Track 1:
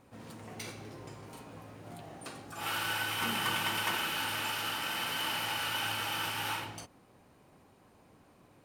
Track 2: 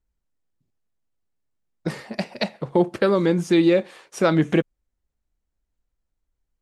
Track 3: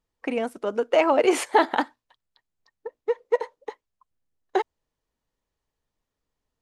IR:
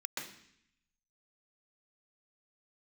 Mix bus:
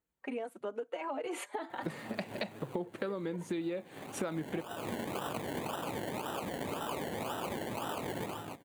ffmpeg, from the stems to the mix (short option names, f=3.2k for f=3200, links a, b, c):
-filter_complex "[0:a]acrusher=samples=28:mix=1:aa=0.000001:lfo=1:lforange=16.8:lforate=1.9,adelay=1700,volume=3dB[a];[1:a]volume=-2dB[b];[2:a]alimiter=limit=-14dB:level=0:latency=1:release=46,asplit=2[c][d];[d]adelay=4.2,afreqshift=2.5[e];[c][e]amix=inputs=2:normalize=1,volume=-6.5dB[f];[a][b][f]amix=inputs=3:normalize=0,highpass=130,equalizer=f=5.3k:w=3.5:g=-12,acompressor=threshold=-34dB:ratio=8"